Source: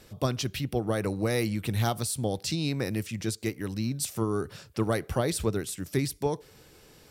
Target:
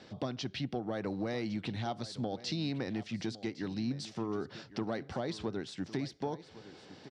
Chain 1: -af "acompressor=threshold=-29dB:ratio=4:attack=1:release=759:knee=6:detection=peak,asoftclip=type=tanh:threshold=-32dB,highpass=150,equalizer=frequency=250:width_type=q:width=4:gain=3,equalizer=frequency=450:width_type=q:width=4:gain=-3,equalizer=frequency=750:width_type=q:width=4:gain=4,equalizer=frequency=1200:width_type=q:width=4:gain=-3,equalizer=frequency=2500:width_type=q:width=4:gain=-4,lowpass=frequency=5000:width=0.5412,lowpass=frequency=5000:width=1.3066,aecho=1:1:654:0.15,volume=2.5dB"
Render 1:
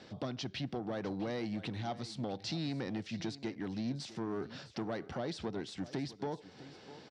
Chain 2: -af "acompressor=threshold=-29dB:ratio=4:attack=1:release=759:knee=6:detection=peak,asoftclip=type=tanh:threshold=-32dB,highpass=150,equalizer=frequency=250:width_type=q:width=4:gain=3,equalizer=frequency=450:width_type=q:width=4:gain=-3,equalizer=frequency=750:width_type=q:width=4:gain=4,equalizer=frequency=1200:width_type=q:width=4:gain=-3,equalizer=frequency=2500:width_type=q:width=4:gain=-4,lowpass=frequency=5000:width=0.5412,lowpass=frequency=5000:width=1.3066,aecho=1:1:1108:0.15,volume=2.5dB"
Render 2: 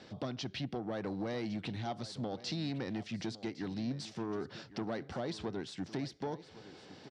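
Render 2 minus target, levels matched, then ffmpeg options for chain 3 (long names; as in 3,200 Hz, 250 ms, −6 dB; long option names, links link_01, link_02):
soft clipping: distortion +11 dB
-af "acompressor=threshold=-29dB:ratio=4:attack=1:release=759:knee=6:detection=peak,asoftclip=type=tanh:threshold=-24dB,highpass=150,equalizer=frequency=250:width_type=q:width=4:gain=3,equalizer=frequency=450:width_type=q:width=4:gain=-3,equalizer=frequency=750:width_type=q:width=4:gain=4,equalizer=frequency=1200:width_type=q:width=4:gain=-3,equalizer=frequency=2500:width_type=q:width=4:gain=-4,lowpass=frequency=5000:width=0.5412,lowpass=frequency=5000:width=1.3066,aecho=1:1:1108:0.15,volume=2.5dB"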